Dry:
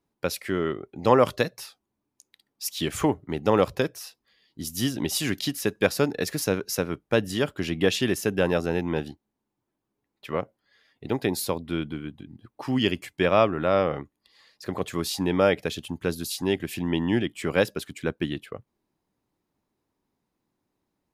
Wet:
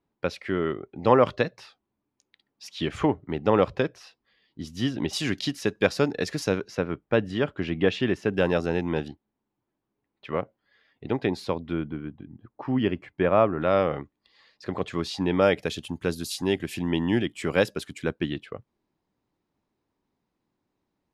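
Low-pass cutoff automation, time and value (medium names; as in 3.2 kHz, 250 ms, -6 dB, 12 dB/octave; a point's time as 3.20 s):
3.4 kHz
from 5.13 s 5.9 kHz
from 6.68 s 2.7 kHz
from 8.34 s 6.4 kHz
from 9.08 s 3.4 kHz
from 11.73 s 1.7 kHz
from 13.62 s 4.4 kHz
from 15.42 s 9.8 kHz
from 18.13 s 5.3 kHz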